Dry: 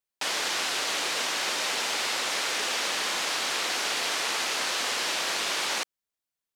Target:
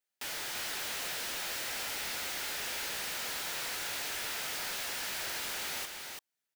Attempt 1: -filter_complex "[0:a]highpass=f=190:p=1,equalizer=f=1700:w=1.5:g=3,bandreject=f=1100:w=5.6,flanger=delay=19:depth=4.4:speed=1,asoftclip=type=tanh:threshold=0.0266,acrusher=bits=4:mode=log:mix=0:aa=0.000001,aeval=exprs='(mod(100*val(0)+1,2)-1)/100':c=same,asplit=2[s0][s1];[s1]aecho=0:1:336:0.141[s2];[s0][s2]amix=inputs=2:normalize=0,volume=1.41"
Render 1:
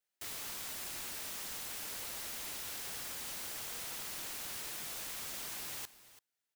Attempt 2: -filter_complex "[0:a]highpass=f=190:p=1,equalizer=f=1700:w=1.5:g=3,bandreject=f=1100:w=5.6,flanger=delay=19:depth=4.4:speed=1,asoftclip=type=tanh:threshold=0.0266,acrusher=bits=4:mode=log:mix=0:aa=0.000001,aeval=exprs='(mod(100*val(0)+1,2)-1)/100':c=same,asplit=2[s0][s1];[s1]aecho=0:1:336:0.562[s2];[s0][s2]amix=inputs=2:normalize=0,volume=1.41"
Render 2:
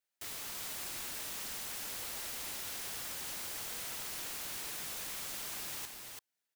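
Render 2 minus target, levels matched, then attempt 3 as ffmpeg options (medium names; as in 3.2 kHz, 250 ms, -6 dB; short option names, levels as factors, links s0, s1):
saturation: distortion -5 dB
-filter_complex "[0:a]highpass=f=190:p=1,equalizer=f=1700:w=1.5:g=3,bandreject=f=1100:w=5.6,flanger=delay=19:depth=4.4:speed=1,asoftclip=type=tanh:threshold=0.01,acrusher=bits=4:mode=log:mix=0:aa=0.000001,aeval=exprs='(mod(100*val(0)+1,2)-1)/100':c=same,asplit=2[s0][s1];[s1]aecho=0:1:336:0.562[s2];[s0][s2]amix=inputs=2:normalize=0,volume=1.41"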